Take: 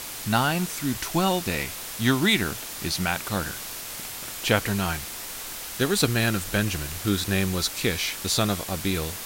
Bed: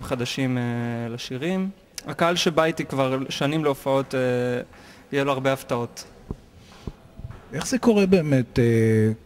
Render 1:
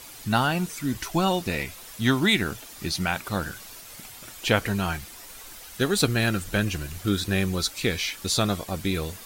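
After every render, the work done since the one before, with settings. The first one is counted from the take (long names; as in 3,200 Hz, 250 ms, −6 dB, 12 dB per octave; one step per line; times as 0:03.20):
broadband denoise 10 dB, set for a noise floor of −36 dBFS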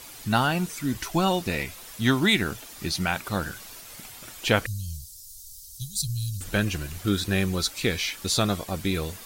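0:04.66–0:06.41: inverse Chebyshev band-stop filter 290–2,100 Hz, stop band 50 dB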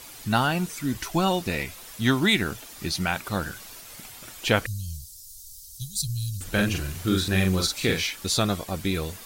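0:06.50–0:08.07: double-tracking delay 43 ms −3 dB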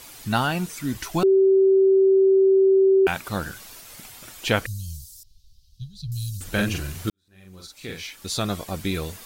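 0:01.23–0:03.07: beep over 385 Hz −13 dBFS
0:05.23–0:06.12: high-frequency loss of the air 320 metres
0:07.10–0:08.62: fade in quadratic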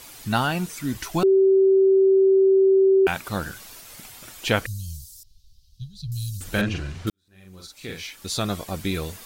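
0:06.61–0:07.07: high-frequency loss of the air 120 metres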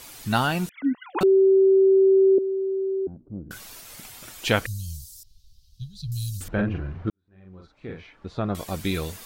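0:00.69–0:01.21: three sine waves on the formant tracks
0:02.38–0:03.51: transistor ladder low-pass 360 Hz, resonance 40%
0:06.48–0:08.55: low-pass filter 1,300 Hz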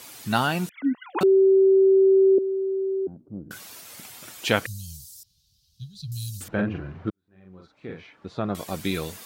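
high-pass filter 120 Hz 12 dB per octave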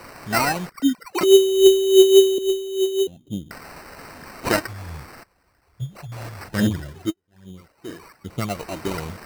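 phase shifter 1.2 Hz, delay 3.3 ms, feedback 67%
sample-rate reduction 3,400 Hz, jitter 0%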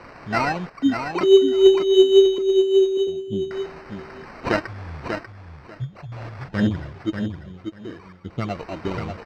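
high-frequency loss of the air 190 metres
on a send: repeating echo 591 ms, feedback 16%, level −6.5 dB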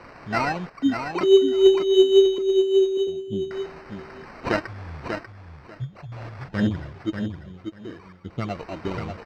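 level −2 dB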